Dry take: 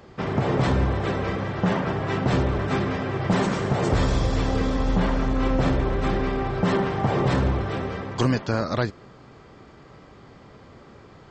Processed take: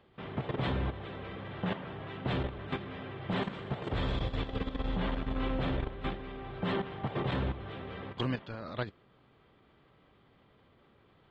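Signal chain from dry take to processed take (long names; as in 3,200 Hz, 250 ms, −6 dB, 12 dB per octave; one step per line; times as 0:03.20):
high shelf with overshoot 4,500 Hz −10 dB, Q 3
output level in coarse steps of 11 dB
level −9 dB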